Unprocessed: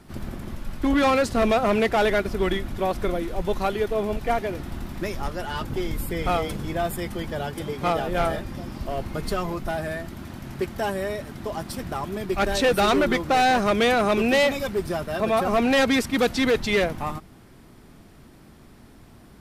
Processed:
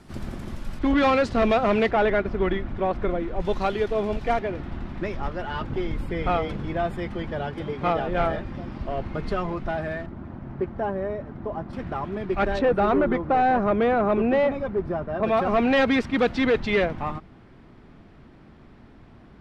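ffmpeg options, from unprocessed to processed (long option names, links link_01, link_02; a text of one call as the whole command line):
ffmpeg -i in.wav -af "asetnsamples=nb_out_samples=441:pad=0,asendcmd='0.79 lowpass f 4100;1.91 lowpass f 2200;3.4 lowpass f 5100;4.39 lowpass f 2800;10.06 lowpass f 1200;11.73 lowpass f 2300;12.59 lowpass f 1300;15.23 lowpass f 2900',lowpass=9300" out.wav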